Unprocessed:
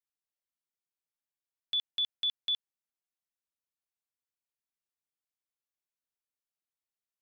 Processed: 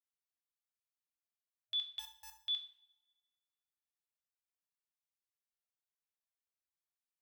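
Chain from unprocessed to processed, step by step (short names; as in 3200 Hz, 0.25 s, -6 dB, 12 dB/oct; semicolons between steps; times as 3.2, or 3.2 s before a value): 1.99–2.4 wrapped overs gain 38.5 dB; FFT band-reject 110–630 Hz; two-slope reverb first 0.47 s, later 1.5 s, from -22 dB, DRR 3.5 dB; gain -8 dB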